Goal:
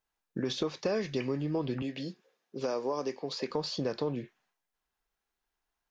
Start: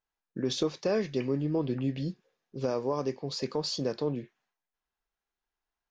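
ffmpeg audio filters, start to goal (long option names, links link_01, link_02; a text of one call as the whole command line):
ffmpeg -i in.wav -filter_complex "[0:a]acrossover=split=710|3800[link_01][link_02][link_03];[link_01]acompressor=threshold=-34dB:ratio=4[link_04];[link_02]acompressor=threshold=-40dB:ratio=4[link_05];[link_03]acompressor=threshold=-50dB:ratio=4[link_06];[link_04][link_05][link_06]amix=inputs=3:normalize=0,asettb=1/sr,asplit=3[link_07][link_08][link_09];[link_07]atrim=end=1.824[link_10];[link_08]atrim=start=1.82:end=3.51,asetpts=PTS-STARTPTS,afade=type=in:duration=0.004:curve=qsin,afade=type=out:start_time=1.686:duration=0.004:curve=qsin,highpass=240[link_11];[link_09]atrim=start=3.506[link_12];[link_10][link_11]acrossfade=duration=0.004:curve1=hsin:curve2=qsin[link_13];[link_13][link_12]acrossfade=duration=0.004:curve1=qsin:curve2=hsin,volume=3.5dB" out.wav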